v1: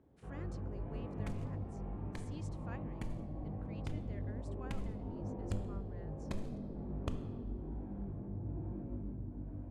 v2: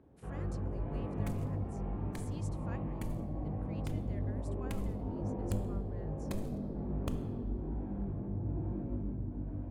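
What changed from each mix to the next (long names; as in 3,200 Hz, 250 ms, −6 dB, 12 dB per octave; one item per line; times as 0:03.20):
first sound +5.0 dB
master: remove high-frequency loss of the air 64 metres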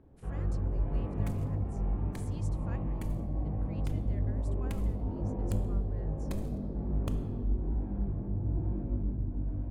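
first sound: remove high-pass filter 120 Hz 6 dB per octave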